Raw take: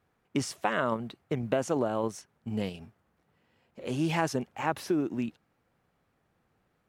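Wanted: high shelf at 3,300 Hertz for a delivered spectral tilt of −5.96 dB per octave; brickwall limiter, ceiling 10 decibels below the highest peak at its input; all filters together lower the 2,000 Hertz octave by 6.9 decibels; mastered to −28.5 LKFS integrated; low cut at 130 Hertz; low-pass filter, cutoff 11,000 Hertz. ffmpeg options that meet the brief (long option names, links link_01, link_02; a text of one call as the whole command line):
ffmpeg -i in.wav -af "highpass=130,lowpass=11000,equalizer=frequency=2000:width_type=o:gain=-8.5,highshelf=frequency=3300:gain=-4,volume=7.5dB,alimiter=limit=-16.5dB:level=0:latency=1" out.wav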